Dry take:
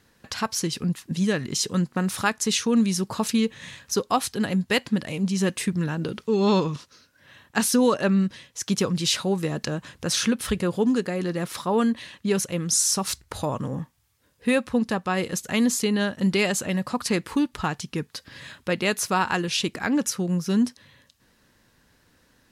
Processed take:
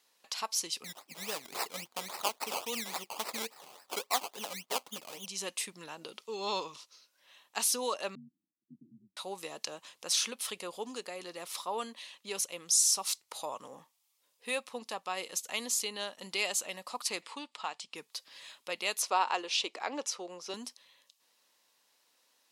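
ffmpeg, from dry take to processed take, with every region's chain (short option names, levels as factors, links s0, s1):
-filter_complex "[0:a]asettb=1/sr,asplit=3[s0][s1][s2];[s0]atrim=end=0.844[s3];[s1]atrim=start=0.84:end=5.26,asetpts=PTS-STARTPTS,afade=t=in:d=0.004:c=qsin,afade=t=out:st=4.416:d=0.004:c=qsin,bandreject=f=360:w=10,acrusher=samples=19:mix=1:aa=0.000001:lfo=1:lforange=11.4:lforate=3.6[s4];[s2]atrim=start=5.256[s5];[s3][s4]acrossfade=d=0.004:c1=hsin:c2=qsin[s6];[s6][s5]acrossfade=d=0.004:c1=qsin:c2=hsin,asettb=1/sr,asplit=3[s7][s8][s9];[s7]atrim=end=8.154[s10];[s8]atrim=start=8.15:end=9.17,asetpts=PTS-STARTPTS,afade=t=in:d=0.004:c=qsin,afade=t=out:st=1.016:d=0.004:c=qsin,asuperpass=centerf=200:order=12:qfactor=1.4,aeval=exprs='val(0)*sin(2*PI*47*n/s)':c=same[s11];[s9]atrim=start=9.166[s12];[s10][s11]acrossfade=d=0.004:c1=hsin:c2=qsin[s13];[s13][s12]acrossfade=d=0.004:c1=qsin:c2=hsin,asettb=1/sr,asplit=3[s14][s15][s16];[s14]atrim=end=17.224[s17];[s15]atrim=start=17.22:end=17.95,asetpts=PTS-STARTPTS,afade=t=in:d=0.004:c=qsin,afade=t=out:st=0.726:d=0.004:c=qsin,acompressor=mode=upward:threshold=0.0141:ratio=2.5:attack=3.2:release=140:knee=2.83:detection=peak,highpass=120,equalizer=f=160:t=q:w=4:g=-8,equalizer=f=360:t=q:w=4:g=-9,equalizer=f=6100:t=q:w=4:g=-9,lowpass=f=8000:w=0.5412,lowpass=f=8000:w=1.3066[s18];[s16]atrim=start=17.946[s19];[s17][s18]acrossfade=d=0.004:c1=hsin:c2=qsin[s20];[s20][s19]acrossfade=d=0.004:c1=qsin:c2=hsin,asettb=1/sr,asplit=3[s21][s22][s23];[s21]atrim=end=19.024[s24];[s22]atrim=start=19.02:end=20.54,asetpts=PTS-STARTPTS,afade=t=in:d=0.004:c=qsin,afade=t=out:st=1.516:d=0.004:c=qsin,highpass=320,lowpass=6000,equalizer=f=430:t=o:w=2.9:g=7[s25];[s23]atrim=start=20.536[s26];[s24][s25]acrossfade=d=0.004:c1=hsin:c2=qsin[s27];[s27][s26]acrossfade=d=0.004:c1=qsin:c2=hsin,highpass=850,equalizer=f=1600:w=2.2:g=-13,volume=0.668"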